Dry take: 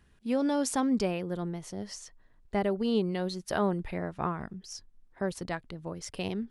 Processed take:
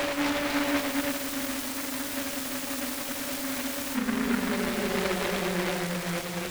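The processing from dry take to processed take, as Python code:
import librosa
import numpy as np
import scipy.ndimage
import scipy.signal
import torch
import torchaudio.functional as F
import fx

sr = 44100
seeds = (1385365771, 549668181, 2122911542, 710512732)

y = fx.quant_dither(x, sr, seeds[0], bits=6, dither='none')
y = fx.paulstretch(y, sr, seeds[1], factor=10.0, window_s=0.25, from_s=0.54)
y = fx.spec_freeze(y, sr, seeds[2], at_s=1.2, hold_s=2.75)
y = fx.noise_mod_delay(y, sr, seeds[3], noise_hz=1400.0, depth_ms=0.24)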